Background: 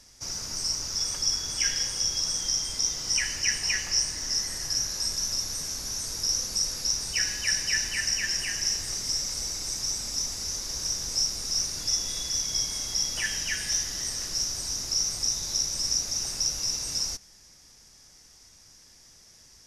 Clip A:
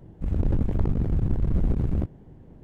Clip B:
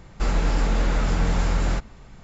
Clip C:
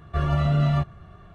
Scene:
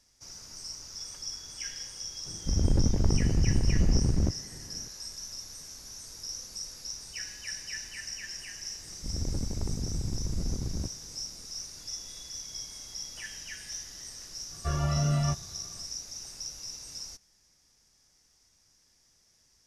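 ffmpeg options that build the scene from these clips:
-filter_complex "[1:a]asplit=2[a][b];[0:a]volume=-12dB[c];[a]atrim=end=2.63,asetpts=PTS-STARTPTS,volume=-1dB,afade=t=in:d=0.004:c=hsin,afade=t=out:st=2.626:d=0.004:c=hsin,adelay=2250[d];[b]atrim=end=2.63,asetpts=PTS-STARTPTS,volume=-9dB,afade=t=in:d=0.004:c=hsin,afade=t=out:st=2.626:d=0.004:c=hsin,adelay=388962S[e];[3:a]atrim=end=1.34,asetpts=PTS-STARTPTS,volume=-6dB,afade=t=in:d=0.004:c=hsin,afade=t=out:st=1.336:d=0.004:c=hsin,adelay=14510[f];[c][d][e][f]amix=inputs=4:normalize=0"

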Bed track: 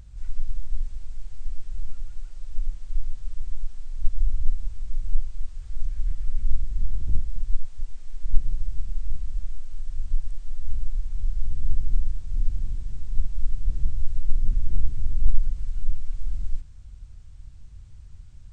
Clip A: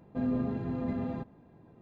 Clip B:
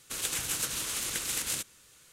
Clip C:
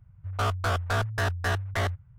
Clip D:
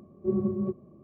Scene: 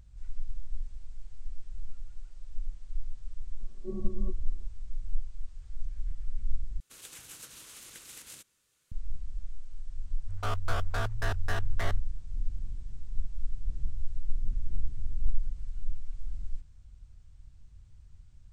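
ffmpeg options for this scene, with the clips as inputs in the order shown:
-filter_complex "[0:a]volume=-8.5dB,asplit=2[a][b];[a]atrim=end=6.804[c];[2:a]atrim=end=2.12,asetpts=PTS-STARTPTS,volume=-15.5dB[d];[b]atrim=start=8.916[e];[4:a]atrim=end=1.03,asetpts=PTS-STARTPTS,volume=-11.5dB,afade=t=in:d=0.004:c=hsin,afade=t=out:st=1.026:d=0.004:c=hsin,adelay=3600[f];[3:a]atrim=end=2.18,asetpts=PTS-STARTPTS,volume=-6.5dB,afade=t=in:d=0.004:c=hsin,afade=t=out:st=2.176:d=0.004:c=hsin,adelay=10040[g];[c][d]acrossfade=d=0.004:c1=hsin:c2=hsin[h];[h][e]acrossfade=d=0.004:c1=hsin:c2=hsin[i];[i][f][g]amix=inputs=3:normalize=0"

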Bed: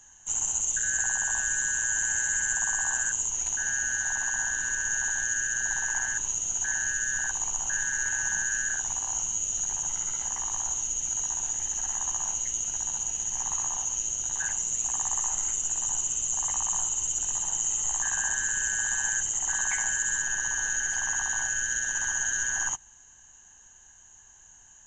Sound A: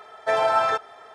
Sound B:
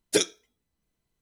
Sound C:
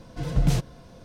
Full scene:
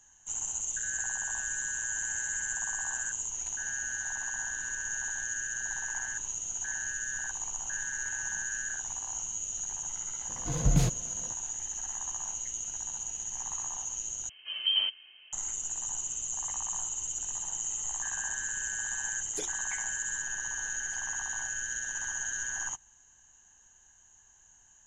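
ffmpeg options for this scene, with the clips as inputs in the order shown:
-filter_complex "[3:a]asplit=2[a][b];[0:a]volume=-6.5dB[c];[b]lowpass=f=2.7k:t=q:w=0.5098,lowpass=f=2.7k:t=q:w=0.6013,lowpass=f=2.7k:t=q:w=0.9,lowpass=f=2.7k:t=q:w=2.563,afreqshift=-3200[d];[c]asplit=2[e][f];[e]atrim=end=14.294[g];[d]atrim=end=1.04,asetpts=PTS-STARTPTS,volume=-7.5dB[h];[f]atrim=start=15.326[i];[a]atrim=end=1.04,asetpts=PTS-STARTPTS,volume=-3dB,afade=t=in:d=0.004:c=hsin,afade=t=out:st=1.036:d=0.004:c=hsin,adelay=10290[j];[2:a]atrim=end=1.21,asetpts=PTS-STARTPTS,volume=-18dB,afade=t=in:d=0.004:c=hsin,afade=t=out:st=1.206:d=0.004:c=hsin,adelay=19230[k];[g][h]acrossfade=d=0.004:c1=hsin:c2=hsin[l];[l][i]acrossfade=d=0.004:c1=hsin:c2=hsin[m];[m][j][k]amix=inputs=3:normalize=0"

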